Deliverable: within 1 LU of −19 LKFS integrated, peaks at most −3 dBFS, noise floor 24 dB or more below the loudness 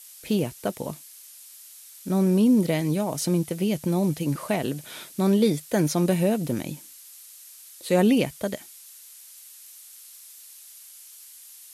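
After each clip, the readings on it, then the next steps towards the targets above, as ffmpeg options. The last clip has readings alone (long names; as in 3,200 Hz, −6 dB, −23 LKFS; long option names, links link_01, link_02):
background noise floor −47 dBFS; target noise floor −49 dBFS; integrated loudness −24.5 LKFS; sample peak −10.0 dBFS; target loudness −19.0 LKFS
→ -af "afftdn=noise_reduction=6:noise_floor=-47"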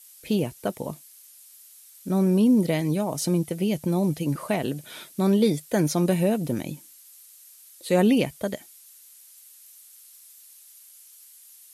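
background noise floor −51 dBFS; integrated loudness −24.5 LKFS; sample peak −10.0 dBFS; target loudness −19.0 LKFS
→ -af "volume=5.5dB"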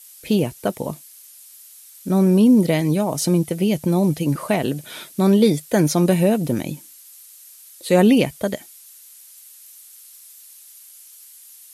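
integrated loudness −19.0 LKFS; sample peak −4.5 dBFS; background noise floor −46 dBFS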